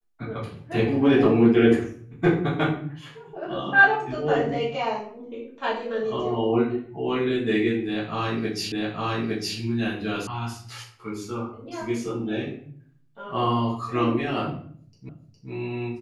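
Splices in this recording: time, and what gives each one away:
0:08.72: the same again, the last 0.86 s
0:10.27: cut off before it has died away
0:15.09: the same again, the last 0.41 s

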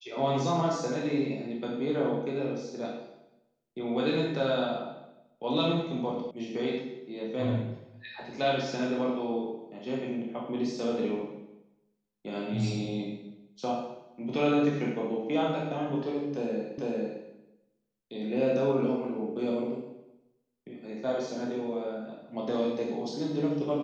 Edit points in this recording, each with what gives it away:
0:06.31: cut off before it has died away
0:16.78: the same again, the last 0.45 s

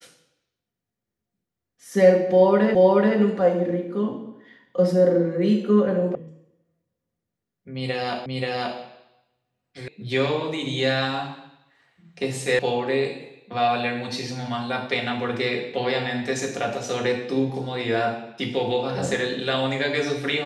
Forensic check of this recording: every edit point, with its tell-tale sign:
0:02.75: the same again, the last 0.43 s
0:06.15: cut off before it has died away
0:08.26: the same again, the last 0.53 s
0:09.88: cut off before it has died away
0:12.59: cut off before it has died away

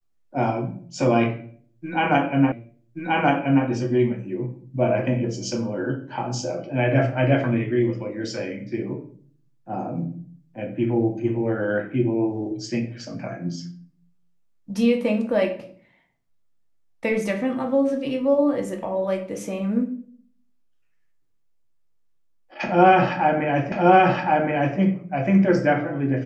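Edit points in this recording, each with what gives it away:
0:02.52: the same again, the last 1.13 s
0:23.72: the same again, the last 1.07 s

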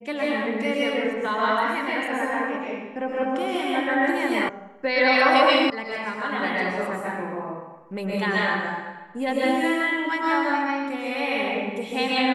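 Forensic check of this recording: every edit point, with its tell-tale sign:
0:04.49: cut off before it has died away
0:05.70: cut off before it has died away

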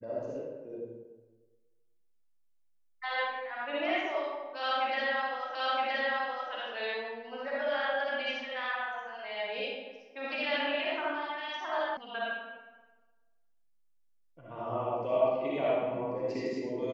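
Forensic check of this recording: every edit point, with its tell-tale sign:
0:05.55: the same again, the last 0.97 s
0:11.97: cut off before it has died away

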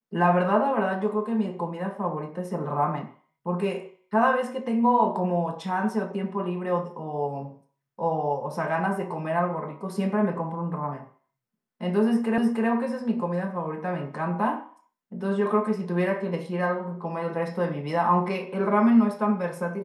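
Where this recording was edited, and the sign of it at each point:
0:12.38: the same again, the last 0.31 s

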